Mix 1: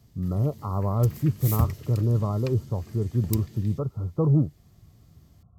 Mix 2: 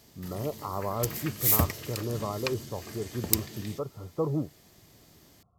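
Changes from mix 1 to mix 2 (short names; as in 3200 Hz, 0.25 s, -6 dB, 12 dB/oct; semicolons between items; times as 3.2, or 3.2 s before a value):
background +10.0 dB; master: add tone controls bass -14 dB, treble 0 dB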